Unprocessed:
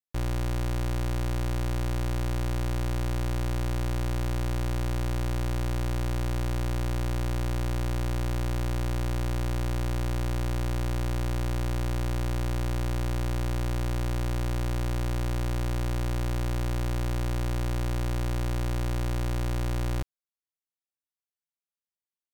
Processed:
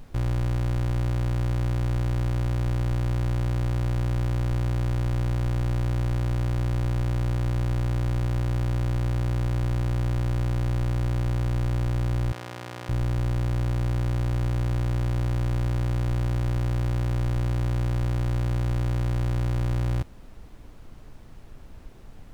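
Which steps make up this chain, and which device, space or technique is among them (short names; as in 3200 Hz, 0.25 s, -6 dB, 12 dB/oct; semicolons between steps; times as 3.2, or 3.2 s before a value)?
car interior (bell 110 Hz +8 dB 0.82 oct; high shelf 4300 Hz -6 dB; brown noise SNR 18 dB); 12.32–12.89 weighting filter A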